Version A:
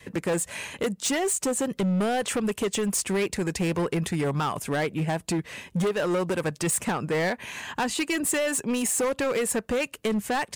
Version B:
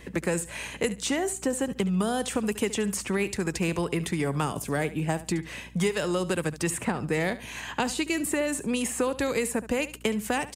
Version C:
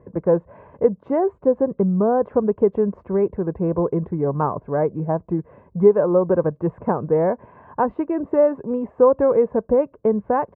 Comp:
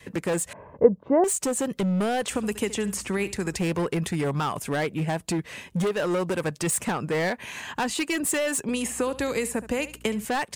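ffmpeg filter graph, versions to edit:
-filter_complex "[1:a]asplit=2[s0][s1];[0:a]asplit=4[s2][s3][s4][s5];[s2]atrim=end=0.532[s6];[2:a]atrim=start=0.528:end=1.242[s7];[s3]atrim=start=1.238:end=2.302[s8];[s0]atrim=start=2.298:end=3.552[s9];[s4]atrim=start=3.548:end=8.692[s10];[s1]atrim=start=8.688:end=10.252[s11];[s5]atrim=start=10.248[s12];[s6][s7]acrossfade=d=0.004:c1=hsin:c2=hsin[s13];[s13][s8]acrossfade=d=0.004:c1=hsin:c2=hsin[s14];[s14][s9]acrossfade=d=0.004:c1=hsin:c2=hsin[s15];[s15][s10]acrossfade=d=0.004:c1=hsin:c2=hsin[s16];[s16][s11]acrossfade=d=0.004:c1=hsin:c2=hsin[s17];[s17][s12]acrossfade=d=0.004:c1=hsin:c2=hsin"

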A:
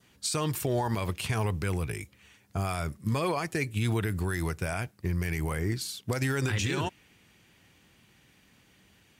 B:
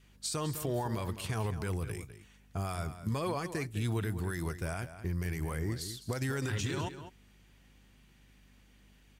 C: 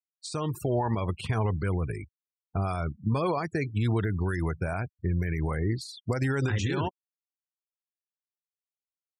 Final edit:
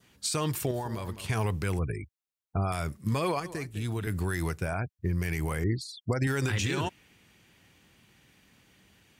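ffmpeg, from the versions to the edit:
-filter_complex "[1:a]asplit=2[s0][s1];[2:a]asplit=3[s2][s3][s4];[0:a]asplit=6[s5][s6][s7][s8][s9][s10];[s5]atrim=end=0.712[s11];[s0]atrim=start=0.708:end=1.282[s12];[s6]atrim=start=1.278:end=1.792[s13];[s2]atrim=start=1.788:end=2.722[s14];[s7]atrim=start=2.718:end=3.402[s15];[s1]atrim=start=3.398:end=4.072[s16];[s8]atrim=start=4.068:end=4.78[s17];[s3]atrim=start=4.54:end=5.24[s18];[s9]atrim=start=5:end=5.642[s19];[s4]atrim=start=5.638:end=6.272[s20];[s10]atrim=start=6.268[s21];[s11][s12]acrossfade=d=0.004:c1=hsin:c2=hsin[s22];[s22][s13]acrossfade=d=0.004:c1=hsin:c2=hsin[s23];[s23][s14]acrossfade=d=0.004:c1=hsin:c2=hsin[s24];[s24][s15]acrossfade=d=0.004:c1=hsin:c2=hsin[s25];[s25][s16]acrossfade=d=0.004:c1=hsin:c2=hsin[s26];[s26][s17]acrossfade=d=0.004:c1=hsin:c2=hsin[s27];[s27][s18]acrossfade=d=0.24:c1=tri:c2=tri[s28];[s28][s19]acrossfade=d=0.24:c1=tri:c2=tri[s29];[s29][s20]acrossfade=d=0.004:c1=hsin:c2=hsin[s30];[s30][s21]acrossfade=d=0.004:c1=hsin:c2=hsin"

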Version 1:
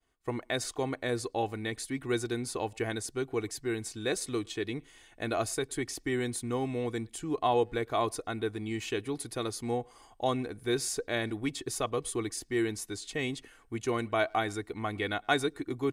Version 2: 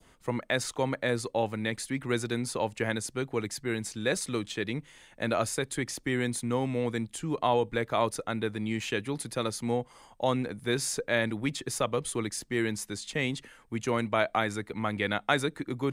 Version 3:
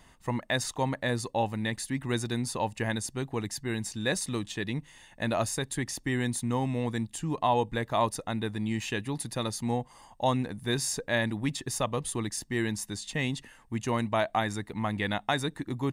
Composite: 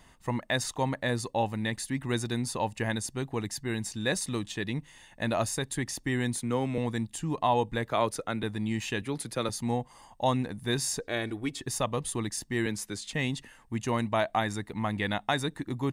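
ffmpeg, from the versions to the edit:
-filter_complex "[1:a]asplit=4[s0][s1][s2][s3];[2:a]asplit=6[s4][s5][s6][s7][s8][s9];[s4]atrim=end=6.362[s10];[s0]atrim=start=6.358:end=6.782[s11];[s5]atrim=start=6.778:end=7.892[s12];[s1]atrim=start=7.888:end=8.432[s13];[s6]atrim=start=8.428:end=9.022[s14];[s2]atrim=start=9.018:end=9.492[s15];[s7]atrim=start=9.488:end=11.012[s16];[0:a]atrim=start=11.008:end=11.612[s17];[s8]atrim=start=11.608:end=12.662[s18];[s3]atrim=start=12.658:end=13.132[s19];[s9]atrim=start=13.128[s20];[s10][s11]acrossfade=d=0.004:c1=hsin:c2=hsin[s21];[s21][s12]acrossfade=d=0.004:c1=hsin:c2=hsin[s22];[s22][s13]acrossfade=d=0.004:c1=hsin:c2=hsin[s23];[s23][s14]acrossfade=d=0.004:c1=hsin:c2=hsin[s24];[s24][s15]acrossfade=d=0.004:c1=hsin:c2=hsin[s25];[s25][s16]acrossfade=d=0.004:c1=hsin:c2=hsin[s26];[s26][s17]acrossfade=d=0.004:c1=hsin:c2=hsin[s27];[s27][s18]acrossfade=d=0.004:c1=hsin:c2=hsin[s28];[s28][s19]acrossfade=d=0.004:c1=hsin:c2=hsin[s29];[s29][s20]acrossfade=d=0.004:c1=hsin:c2=hsin"

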